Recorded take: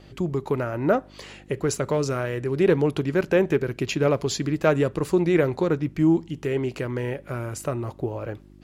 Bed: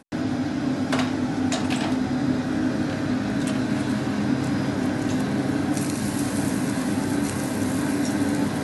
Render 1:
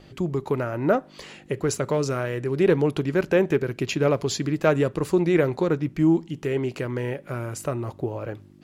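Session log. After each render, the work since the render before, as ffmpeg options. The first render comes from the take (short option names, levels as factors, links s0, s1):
-af "bandreject=f=50:t=h:w=4,bandreject=f=100:t=h:w=4"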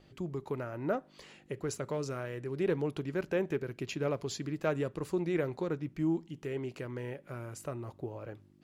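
-af "volume=0.266"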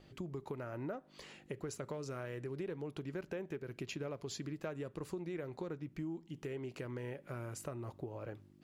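-af "acompressor=threshold=0.0112:ratio=6"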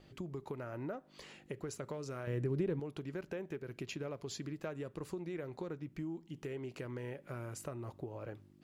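-filter_complex "[0:a]asettb=1/sr,asplit=3[s0][s1][s2];[s0]atrim=end=2.274[s3];[s1]atrim=start=2.27:end=2.8,asetpts=PTS-STARTPTS,afade=t=in:d=0.004:c=qsin,afade=t=out:st=0.526:d=0.004:c=qsin,lowshelf=f=390:g=11.5[s4];[s2]atrim=start=2.796[s5];[s3][s4]acrossfade=d=0.004:c1=hsin:c2=qsin[s6];[s6][s5]acrossfade=d=0.004:c1=qsin:c2=hsin"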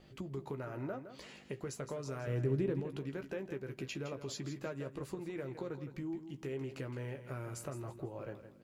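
-filter_complex "[0:a]asplit=2[s0][s1];[s1]adelay=15,volume=0.398[s2];[s0][s2]amix=inputs=2:normalize=0,aecho=1:1:164|328|492:0.282|0.0846|0.0254"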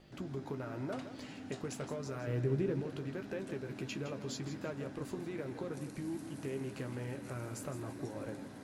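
-filter_complex "[1:a]volume=0.0631[s0];[0:a][s0]amix=inputs=2:normalize=0"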